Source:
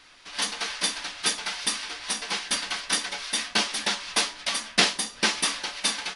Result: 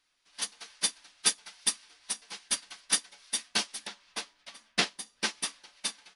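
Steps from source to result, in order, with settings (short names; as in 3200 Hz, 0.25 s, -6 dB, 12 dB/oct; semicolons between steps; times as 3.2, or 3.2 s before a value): high shelf 6000 Hz +11 dB, from 3.87 s -2 dB, from 4.98 s +5.5 dB; upward expander 2.5:1, over -30 dBFS; gain -4 dB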